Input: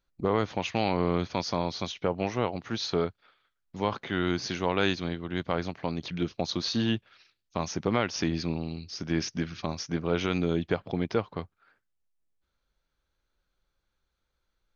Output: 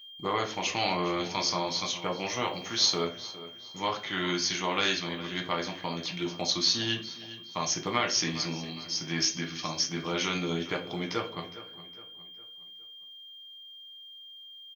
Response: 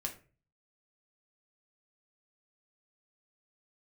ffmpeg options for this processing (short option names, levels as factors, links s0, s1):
-filter_complex "[0:a]aemphasis=mode=production:type=riaa,aeval=exprs='val(0)+0.00398*sin(2*PI*3200*n/s)':c=same,asettb=1/sr,asplit=3[s0][s1][s2];[s0]atrim=end=2.284[s3];[s1]atrim=start=2.28:end=3.06,asetpts=PTS-STARTPTS,afade=t=in:d=0.004:c=qsin,afade=t=out:st=0.776:d=0.004:c=qsin,highshelf=f=4400:g=5[s4];[s2]atrim=start=3.056[s5];[s3][s4]acrossfade=d=0.004:c1=hsin:c2=qsin[s6];[s6][s5]acrossfade=d=0.004:c1=qsin:c2=hsin,asplit=2[s7][s8];[s8]adelay=411,lowpass=f=4900:p=1,volume=0.178,asplit=2[s9][s10];[s10]adelay=411,lowpass=f=4900:p=1,volume=0.43,asplit=2[s11][s12];[s12]adelay=411,lowpass=f=4900:p=1,volume=0.43,asplit=2[s13][s14];[s14]adelay=411,lowpass=f=4900:p=1,volume=0.43[s15];[s7][s9][s11][s13][s15]amix=inputs=5:normalize=0[s16];[1:a]atrim=start_sample=2205[s17];[s16][s17]afir=irnorm=-1:irlink=0"